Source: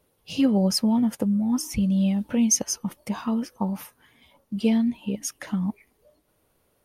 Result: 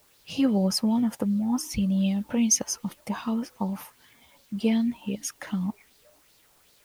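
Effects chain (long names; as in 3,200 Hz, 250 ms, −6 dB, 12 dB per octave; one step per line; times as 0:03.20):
in parallel at −9.5 dB: bit-depth reduction 8 bits, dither triangular
on the sum: auto-filter bell 2.6 Hz 760–4,500 Hz +8 dB
level −5 dB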